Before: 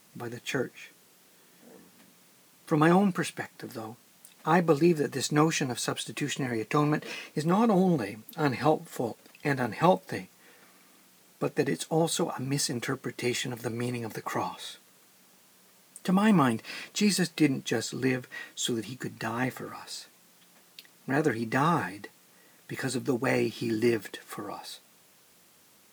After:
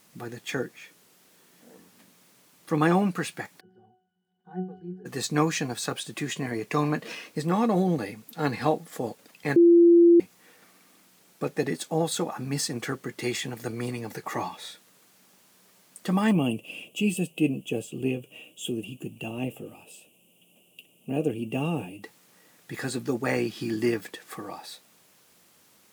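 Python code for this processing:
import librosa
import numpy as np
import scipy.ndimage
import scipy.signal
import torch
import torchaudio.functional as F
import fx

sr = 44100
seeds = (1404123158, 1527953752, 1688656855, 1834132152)

y = fx.octave_resonator(x, sr, note='F#', decay_s=0.38, at=(3.59, 5.05), fade=0.02)
y = fx.curve_eq(y, sr, hz=(620.0, 910.0, 1900.0, 2800.0, 4200.0, 8700.0), db=(0, -12, -26, 10, -24, -2), at=(16.31, 22.02), fade=0.02)
y = fx.edit(y, sr, fx.bleep(start_s=9.56, length_s=0.64, hz=342.0, db=-12.0), tone=tone)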